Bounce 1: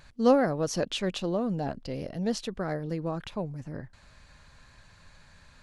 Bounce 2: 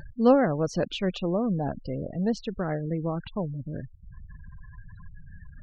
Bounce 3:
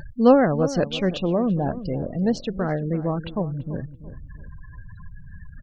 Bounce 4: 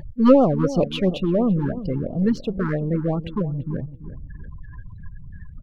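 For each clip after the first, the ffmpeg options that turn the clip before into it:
-af "acompressor=mode=upward:threshold=-36dB:ratio=2.5,afftfilt=real='re*gte(hypot(re,im),0.0126)':imag='im*gte(hypot(re,im),0.0126)':win_size=1024:overlap=0.75,bass=f=250:g=3,treble=f=4k:g=-9,volume=1.5dB"
-filter_complex "[0:a]asplit=2[a][b];[b]adelay=336,lowpass=f=1.1k:p=1,volume=-13dB,asplit=2[c][d];[d]adelay=336,lowpass=f=1.1k:p=1,volume=0.35,asplit=2[e][f];[f]adelay=336,lowpass=f=1.1k:p=1,volume=0.35[g];[a][c][e][g]amix=inputs=4:normalize=0,volume=4.5dB"
-filter_complex "[0:a]aeval=exprs='if(lt(val(0),0),0.708*val(0),val(0))':c=same,asplit=2[a][b];[b]adynamicsmooth=sensitivity=2:basefreq=2.8k,volume=2dB[c];[a][c]amix=inputs=2:normalize=0,afftfilt=real='re*(1-between(b*sr/1024,590*pow(2000/590,0.5+0.5*sin(2*PI*2.9*pts/sr))/1.41,590*pow(2000/590,0.5+0.5*sin(2*PI*2.9*pts/sr))*1.41))':imag='im*(1-between(b*sr/1024,590*pow(2000/590,0.5+0.5*sin(2*PI*2.9*pts/sr))/1.41,590*pow(2000/590,0.5+0.5*sin(2*PI*2.9*pts/sr))*1.41))':win_size=1024:overlap=0.75,volume=-3dB"

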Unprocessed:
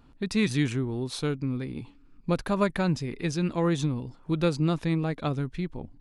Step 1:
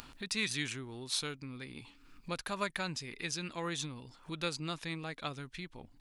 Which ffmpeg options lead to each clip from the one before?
-af "acompressor=mode=upward:threshold=-26dB:ratio=2.5,tiltshelf=f=970:g=-9,volume=-8dB"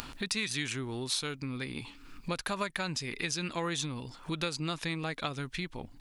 -af "acompressor=threshold=-39dB:ratio=4,volume=8.5dB"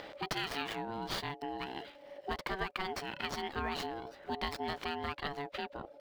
-filter_complex "[0:a]acrossover=split=4400[a][b];[b]acrusher=samples=17:mix=1:aa=0.000001:lfo=1:lforange=10.2:lforate=1.3[c];[a][c]amix=inputs=2:normalize=0,aeval=exprs='val(0)*sin(2*PI*570*n/s)':c=same"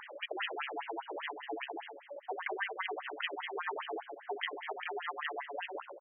-filter_complex "[0:a]asplit=2[a][b];[b]aecho=0:1:98|196|294|392|490:0.501|0.216|0.0927|0.0398|0.0171[c];[a][c]amix=inputs=2:normalize=0,afftfilt=real='re*between(b*sr/1024,400*pow(2400/400,0.5+0.5*sin(2*PI*5*pts/sr))/1.41,400*pow(2400/400,0.5+0.5*sin(2*PI*5*pts/sr))*1.41)':imag='im*between(b*sr/1024,400*pow(2400/400,0.5+0.5*sin(2*PI*5*pts/sr))/1.41,400*pow(2400/400,0.5+0.5*sin(2*PI*5*pts/sr))*1.41)':win_size=1024:overlap=0.75,volume=5dB"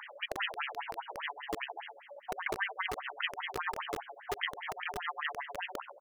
-filter_complex "[0:a]aeval=exprs='val(0)+0.002*(sin(2*PI*50*n/s)+sin(2*PI*2*50*n/s)/2+sin(2*PI*3*50*n/s)/3+sin(2*PI*4*50*n/s)/4+sin(2*PI*5*50*n/s)/5)':c=same,acrossover=split=580[a][b];[a]acrusher=bits=5:mix=0:aa=0.000001[c];[c][b]amix=inputs=2:normalize=0,volume=2.5dB"

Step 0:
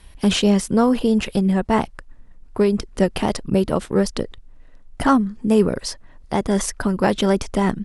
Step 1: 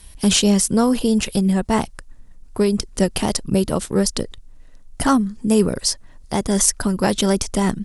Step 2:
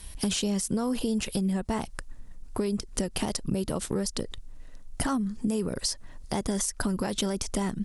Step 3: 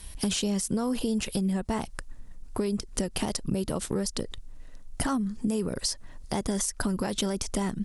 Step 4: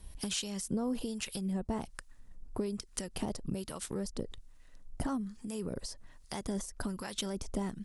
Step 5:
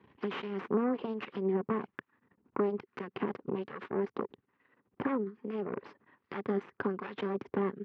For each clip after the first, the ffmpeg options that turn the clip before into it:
-af "bass=f=250:g=3,treble=f=4k:g=13,volume=-1.5dB"
-af "alimiter=limit=-13dB:level=0:latency=1:release=141,acompressor=threshold=-25dB:ratio=6"
-af anull
-filter_complex "[0:a]acrossover=split=950[a][b];[a]aeval=exprs='val(0)*(1-0.7/2+0.7/2*cos(2*PI*1.2*n/s))':c=same[c];[b]aeval=exprs='val(0)*(1-0.7/2-0.7/2*cos(2*PI*1.2*n/s))':c=same[d];[c][d]amix=inputs=2:normalize=0,volume=-4.5dB"
-af "aeval=exprs='0.0944*(cos(1*acos(clip(val(0)/0.0944,-1,1)))-cos(1*PI/2))+0.0335*(cos(6*acos(clip(val(0)/0.0944,-1,1)))-cos(6*PI/2))':c=same,highpass=f=150:w=0.5412,highpass=f=150:w=1.3066,equalizer=f=160:t=q:w=4:g=-7,equalizer=f=400:t=q:w=4:g=6,equalizer=f=640:t=q:w=4:g=-9,equalizer=f=1.1k:t=q:w=4:g=4,lowpass=f=2.3k:w=0.5412,lowpass=f=2.3k:w=1.3066,volume=1dB"

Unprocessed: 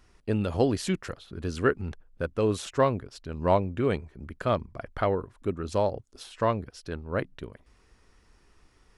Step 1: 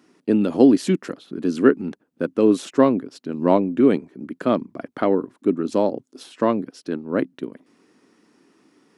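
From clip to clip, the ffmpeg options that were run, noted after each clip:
-af "highpass=f=160:w=0.5412,highpass=f=160:w=1.3066,equalizer=f=280:w=1.4:g=14,volume=2dB"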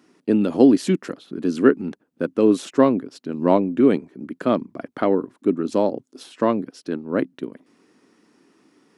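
-af anull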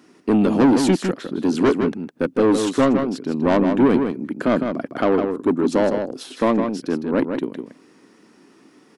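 -filter_complex "[0:a]asoftclip=type=tanh:threshold=-16.5dB,asplit=2[a][b];[b]adelay=157.4,volume=-6dB,highshelf=f=4k:g=-3.54[c];[a][c]amix=inputs=2:normalize=0,volume=5.5dB"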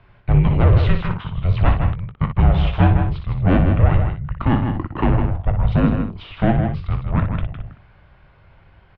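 -af "aecho=1:1:19|60:0.266|0.398,highpass=f=190:t=q:w=0.5412,highpass=f=190:t=q:w=1.307,lowpass=f=3.6k:t=q:w=0.5176,lowpass=f=3.6k:t=q:w=0.7071,lowpass=f=3.6k:t=q:w=1.932,afreqshift=-360,volume=2dB"

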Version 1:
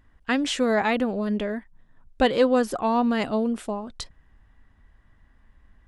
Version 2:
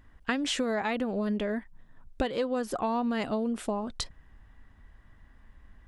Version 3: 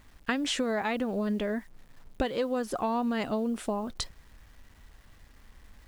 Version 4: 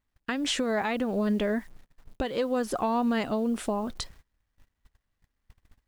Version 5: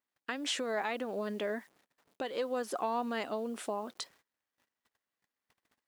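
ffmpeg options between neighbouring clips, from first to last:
-af "acompressor=threshold=-28dB:ratio=10,volume=2dB"
-af "acrusher=bits=9:mix=0:aa=0.000001"
-af "agate=range=-28dB:threshold=-47dB:ratio=16:detection=peak,alimiter=limit=-21.5dB:level=0:latency=1:release=248,volume=3.5dB"
-af "highpass=340,volume=-5dB"

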